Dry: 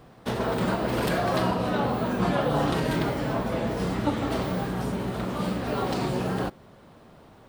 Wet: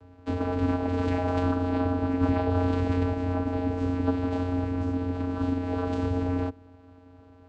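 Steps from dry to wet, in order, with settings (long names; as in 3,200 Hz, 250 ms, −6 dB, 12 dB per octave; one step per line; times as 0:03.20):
channel vocoder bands 8, square 89.9 Hz
level +1 dB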